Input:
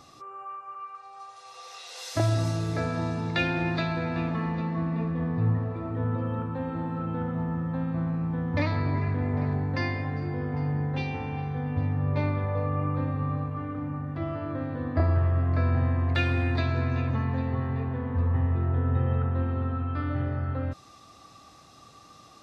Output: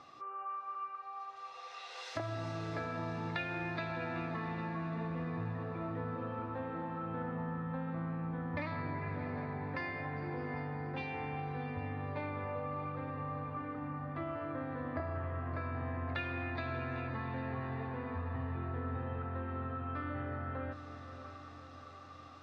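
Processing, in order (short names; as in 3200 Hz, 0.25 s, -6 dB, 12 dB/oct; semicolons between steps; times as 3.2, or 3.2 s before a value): LPF 2000 Hz 12 dB/oct; tilt +3 dB/oct; compressor, threshold -34 dBFS, peak gain reduction 10 dB; on a send: diffused feedback echo 0.63 s, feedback 58%, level -10.5 dB; on the sum: gain -1.5 dB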